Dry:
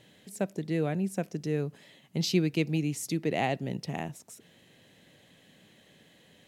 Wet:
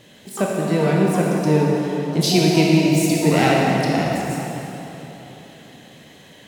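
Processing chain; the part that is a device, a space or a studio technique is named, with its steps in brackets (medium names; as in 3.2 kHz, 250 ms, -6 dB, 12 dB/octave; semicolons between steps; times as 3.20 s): shimmer-style reverb (harmony voices +12 st -11 dB; reverberation RT60 3.6 s, pre-delay 18 ms, DRR -3.5 dB); trim +8.5 dB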